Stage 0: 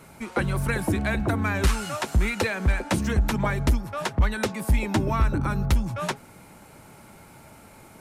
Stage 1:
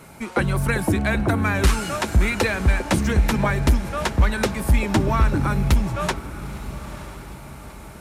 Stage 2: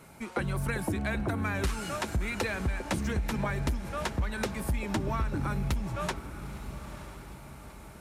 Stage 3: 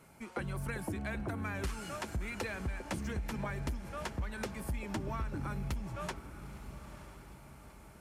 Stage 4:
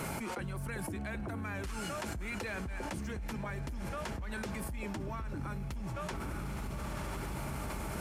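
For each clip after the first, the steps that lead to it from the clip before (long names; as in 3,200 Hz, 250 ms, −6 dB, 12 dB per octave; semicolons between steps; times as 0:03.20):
feedback delay with all-pass diffusion 928 ms, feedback 47%, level −13.5 dB; level +4 dB
downward compressor, threshold −18 dBFS, peak gain reduction 7 dB; level −8 dB
notch filter 3,800 Hz, Q 16; level −7 dB
envelope flattener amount 100%; level −6.5 dB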